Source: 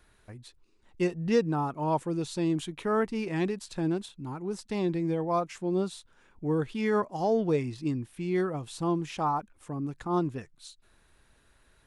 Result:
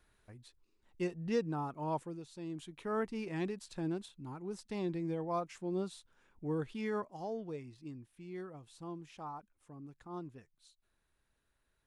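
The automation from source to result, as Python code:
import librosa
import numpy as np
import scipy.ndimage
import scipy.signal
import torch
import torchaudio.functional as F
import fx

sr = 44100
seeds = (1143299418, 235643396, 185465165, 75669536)

y = fx.gain(x, sr, db=fx.line((1.99, -8.5), (2.27, -18.0), (2.99, -8.0), (6.74, -8.0), (7.52, -16.5)))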